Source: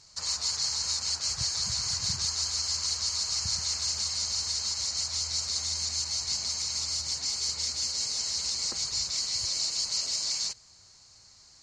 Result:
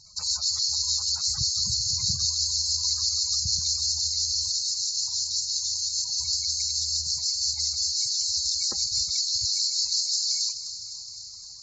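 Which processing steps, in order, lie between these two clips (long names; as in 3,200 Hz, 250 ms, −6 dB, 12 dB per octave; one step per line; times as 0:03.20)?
gate on every frequency bin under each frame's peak −15 dB strong
0:04.48–0:06.18: phaser with its sweep stopped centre 360 Hz, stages 8
delay with a high-pass on its return 257 ms, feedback 75%, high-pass 3,000 Hz, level −12 dB
level +4.5 dB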